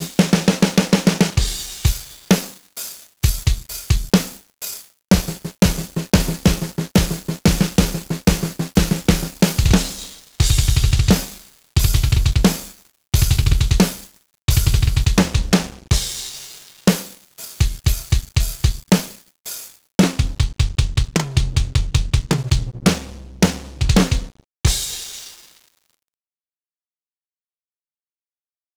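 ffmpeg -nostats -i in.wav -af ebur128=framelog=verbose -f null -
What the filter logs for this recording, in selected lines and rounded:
Integrated loudness:
  I:         -19.1 LUFS
  Threshold: -29.8 LUFS
Loudness range:
  LRA:         3.7 LU
  Threshold: -40.1 LUFS
  LRA low:   -22.1 LUFS
  LRA high:  -18.4 LUFS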